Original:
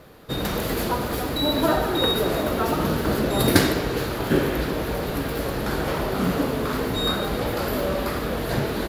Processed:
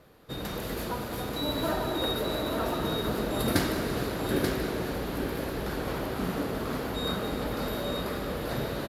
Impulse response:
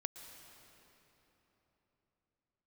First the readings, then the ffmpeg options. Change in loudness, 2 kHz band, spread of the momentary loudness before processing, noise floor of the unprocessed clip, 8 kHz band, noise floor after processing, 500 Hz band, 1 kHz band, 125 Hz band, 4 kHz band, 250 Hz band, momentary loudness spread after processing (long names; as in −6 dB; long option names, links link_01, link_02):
−7.0 dB, −7.5 dB, 6 LU, −28 dBFS, −7.5 dB, −36 dBFS, −7.0 dB, −7.5 dB, −7.5 dB, −7.5 dB, −7.0 dB, 5 LU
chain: -filter_complex "[0:a]aecho=1:1:884:0.531[link_01];[1:a]atrim=start_sample=2205,asetrate=32193,aresample=44100[link_02];[link_01][link_02]afir=irnorm=-1:irlink=0,volume=-8dB"